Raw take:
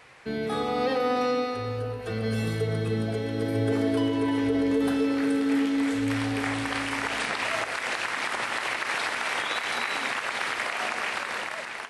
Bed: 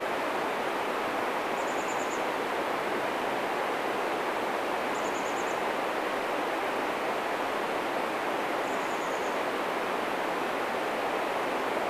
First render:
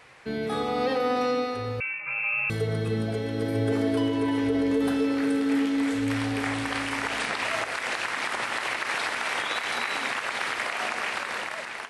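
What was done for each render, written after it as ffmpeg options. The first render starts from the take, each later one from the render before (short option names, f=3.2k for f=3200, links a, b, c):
-filter_complex "[0:a]asettb=1/sr,asplit=3[a][b][c];[a]atrim=end=1.804[d];[b]atrim=start=1.8:end=2.5,asetpts=PTS-STARTPTS,afade=t=in:d=0.004:c=qsin,afade=t=out:st=0.696:d=0.004:c=qsin,lowpass=f=2.4k:t=q:w=0.5098,lowpass=f=2.4k:t=q:w=0.6013,lowpass=f=2.4k:t=q:w=0.9,lowpass=f=2.4k:t=q:w=2.563,afreqshift=-2800[e];[c]atrim=start=2.496[f];[d][e]acrossfade=d=0.004:c1=hsin:c2=qsin[g];[g][f]acrossfade=d=0.004:c1=qsin:c2=hsin"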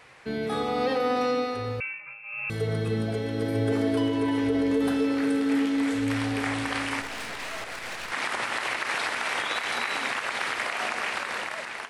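-filter_complex "[0:a]asettb=1/sr,asplit=3[a][b][c];[a]atrim=end=7.014[d];[b]atrim=start=7.01:end=8.12,asetpts=PTS-STARTPTS,afade=t=in:d=0.004:c=qsin,afade=t=out:st=1.106:d=0.004:c=qsin,aeval=exprs='(tanh(39.8*val(0)+0.7)-tanh(0.7))/39.8':c=same[e];[c]atrim=start=8.116[f];[d][e]acrossfade=d=0.004:c1=hsin:c2=qsin[g];[g][f]acrossfade=d=0.004:c1=qsin:c2=hsin,asplit=3[h][i][j];[h]atrim=end=2.18,asetpts=PTS-STARTPTS,afade=t=out:st=1.74:d=0.44:silence=0.149624[k];[i]atrim=start=2.18:end=2.23,asetpts=PTS-STARTPTS,volume=-16.5dB[l];[j]atrim=start=2.23,asetpts=PTS-STARTPTS,afade=t=in:d=0.44:silence=0.149624[m];[k][l][m]concat=n=3:v=0:a=1"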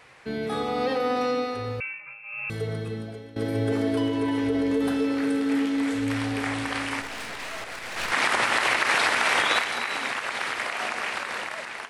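-filter_complex "[0:a]asettb=1/sr,asplit=3[a][b][c];[a]atrim=end=7.964[d];[b]atrim=start=7.96:end=9.64,asetpts=PTS-STARTPTS,afade=t=in:d=0.004:c=qsin,afade=t=out:st=1.676:d=0.004:c=qsin,acontrast=69[e];[c]atrim=start=9.636[f];[d][e]acrossfade=d=0.004:c1=hsin:c2=qsin[g];[g][f]acrossfade=d=0.004:c1=qsin:c2=hsin,asplit=2[h][i];[h]atrim=end=3.36,asetpts=PTS-STARTPTS,afade=t=out:st=2.43:d=0.93:silence=0.141254[j];[i]atrim=start=3.36,asetpts=PTS-STARTPTS,afade=t=in:d=0.004:c=hsin:silence=0.141254[k];[j][k]concat=n=2:v=0:a=1"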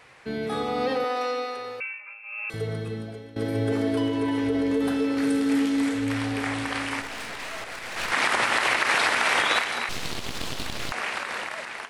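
-filter_complex "[0:a]asettb=1/sr,asplit=3[a][b][c];[a]atrim=end=1.044[d];[b]atrim=start=1.04:end=2.54,asetpts=PTS-STARTPTS,afade=t=in:d=0.004:c=qsin,afade=t=out:st=1.496:d=0.004:c=qsin,highpass=480[e];[c]atrim=start=2.536[f];[d][e]acrossfade=d=0.004:c1=hsin:c2=qsin[g];[g][f]acrossfade=d=0.004:c1=qsin:c2=hsin,asettb=1/sr,asplit=3[h][i][j];[h]atrim=end=5.174[k];[i]atrim=start=5.17:end=5.89,asetpts=PTS-STARTPTS,afade=t=in:d=0.004:c=qsin,afade=t=out:st=0.716:d=0.004:c=qsin,bass=f=250:g=4,treble=f=4k:g=6[l];[j]atrim=start=5.886[m];[k][l]acrossfade=d=0.004:c1=hsin:c2=qsin[n];[n][m]acrossfade=d=0.004:c1=qsin:c2=hsin,asettb=1/sr,asplit=3[o][p][q];[o]atrim=end=9.894[r];[p]atrim=start=9.89:end=10.92,asetpts=PTS-STARTPTS,afade=t=in:d=0.004:c=qsin,afade=t=out:st=1.026:d=0.004:c=qsin,aeval=exprs='abs(val(0))':c=same[s];[q]atrim=start=10.916[t];[r][s]acrossfade=d=0.004:c1=hsin:c2=qsin[u];[u][t]acrossfade=d=0.004:c1=qsin:c2=hsin"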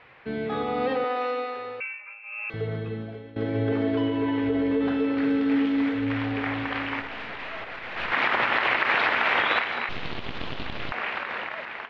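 -af "lowpass=f=3.3k:w=0.5412,lowpass=f=3.3k:w=1.3066"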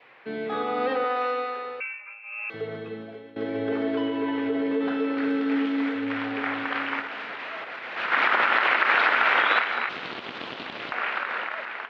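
-af "adynamicequalizer=threshold=0.00891:dfrequency=1400:dqfactor=3.3:tfrequency=1400:tqfactor=3.3:attack=5:release=100:ratio=0.375:range=3:mode=boostabove:tftype=bell,highpass=250"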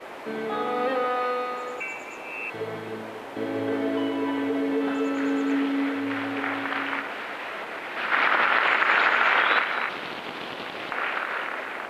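-filter_complex "[1:a]volume=-9dB[a];[0:a][a]amix=inputs=2:normalize=0"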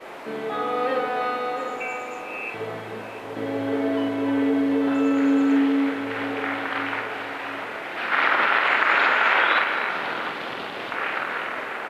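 -filter_complex "[0:a]asplit=2[a][b];[b]adelay=47,volume=-5.5dB[c];[a][c]amix=inputs=2:normalize=0,asplit=2[d][e];[e]adelay=691,lowpass=f=1k:p=1,volume=-5.5dB,asplit=2[f][g];[g]adelay=691,lowpass=f=1k:p=1,volume=0.35,asplit=2[h][i];[i]adelay=691,lowpass=f=1k:p=1,volume=0.35,asplit=2[j][k];[k]adelay=691,lowpass=f=1k:p=1,volume=0.35[l];[d][f][h][j][l]amix=inputs=5:normalize=0"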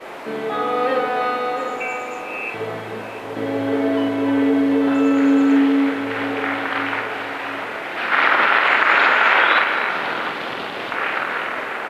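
-af "volume=4.5dB,alimiter=limit=-1dB:level=0:latency=1"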